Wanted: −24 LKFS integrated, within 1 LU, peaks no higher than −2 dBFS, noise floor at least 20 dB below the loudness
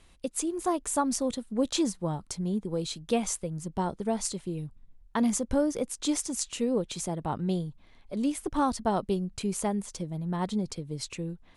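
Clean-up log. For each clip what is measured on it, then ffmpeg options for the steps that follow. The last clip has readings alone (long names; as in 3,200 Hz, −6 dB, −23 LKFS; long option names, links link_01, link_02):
integrated loudness −30.5 LKFS; sample peak −12.5 dBFS; target loudness −24.0 LKFS
→ -af "volume=6.5dB"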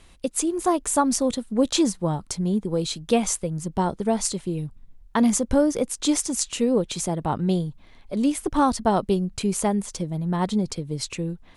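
integrated loudness −24.0 LKFS; sample peak −6.0 dBFS; background noise floor −51 dBFS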